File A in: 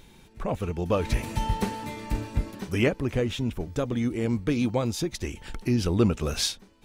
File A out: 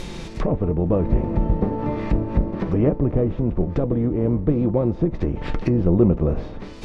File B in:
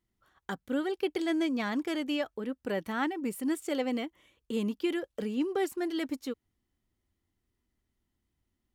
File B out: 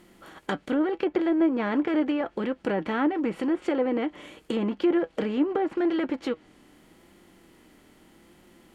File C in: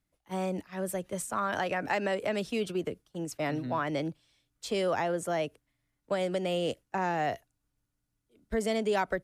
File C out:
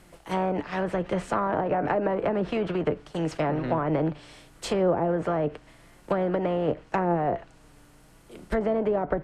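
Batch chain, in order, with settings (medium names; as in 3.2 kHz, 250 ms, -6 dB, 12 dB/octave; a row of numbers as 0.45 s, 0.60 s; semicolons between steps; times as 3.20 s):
spectral levelling over time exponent 0.6; low-pass that closes with the level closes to 670 Hz, closed at -21.5 dBFS; bass shelf 98 Hz +5.5 dB; flange 0.83 Hz, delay 5.5 ms, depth 1.4 ms, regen +58%; trim +7 dB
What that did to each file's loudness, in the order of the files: +6.0 LU, +6.0 LU, +5.0 LU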